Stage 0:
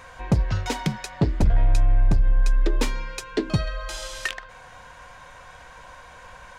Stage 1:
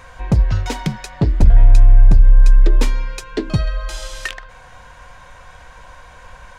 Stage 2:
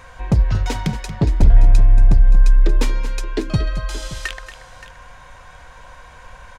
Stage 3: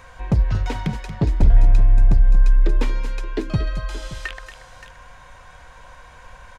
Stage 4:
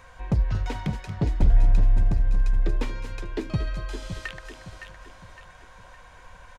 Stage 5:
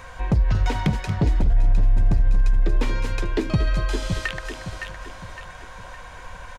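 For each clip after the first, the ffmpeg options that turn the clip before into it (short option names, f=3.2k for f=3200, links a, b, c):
-af "lowshelf=f=84:g=9.5,volume=2dB"
-af "aecho=1:1:231|573:0.237|0.168,volume=-1dB"
-filter_complex "[0:a]acrossover=split=3500[a][b];[b]acompressor=threshold=-41dB:ratio=4:attack=1:release=60[c];[a][c]amix=inputs=2:normalize=0,volume=-2.5dB"
-af "aecho=1:1:562|1124|1686|2248|2810:0.316|0.136|0.0585|0.0251|0.0108,volume=-5dB"
-af "alimiter=limit=-20.5dB:level=0:latency=1:release=113,volume=9dB"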